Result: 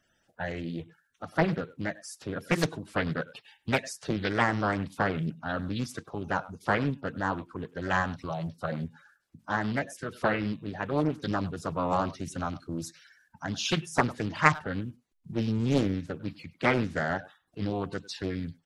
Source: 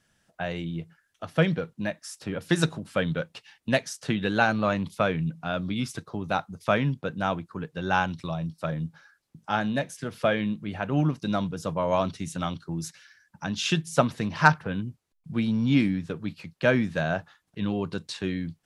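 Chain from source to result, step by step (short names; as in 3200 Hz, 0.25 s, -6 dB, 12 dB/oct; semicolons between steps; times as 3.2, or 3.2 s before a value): bin magnitudes rounded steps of 30 dB; speakerphone echo 0.1 s, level -18 dB; Doppler distortion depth 0.95 ms; gain -2 dB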